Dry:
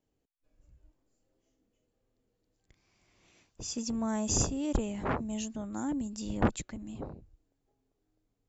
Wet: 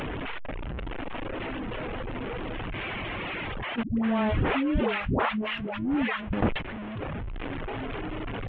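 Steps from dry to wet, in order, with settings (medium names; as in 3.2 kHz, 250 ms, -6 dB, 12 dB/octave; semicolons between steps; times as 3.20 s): one-bit delta coder 16 kbps, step -32 dBFS; gate -32 dBFS, range -22 dB; reverb removal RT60 0.78 s; 3.83–6.33 s: phase dispersion highs, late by 141 ms, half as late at 460 Hz; level flattener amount 70%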